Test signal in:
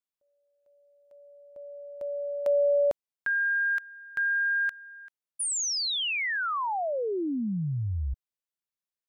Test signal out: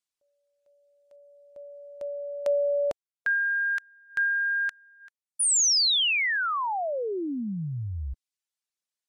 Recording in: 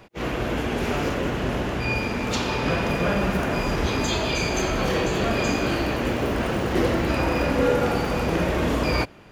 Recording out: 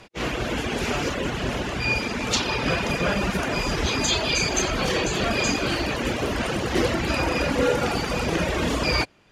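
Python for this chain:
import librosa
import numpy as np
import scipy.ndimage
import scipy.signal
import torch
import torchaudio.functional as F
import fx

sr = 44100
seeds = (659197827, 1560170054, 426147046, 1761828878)

y = fx.dereverb_blind(x, sr, rt60_s=0.76)
y = scipy.signal.sosfilt(scipy.signal.butter(2, 9200.0, 'lowpass', fs=sr, output='sos'), y)
y = fx.high_shelf(y, sr, hz=2500.0, db=9.5)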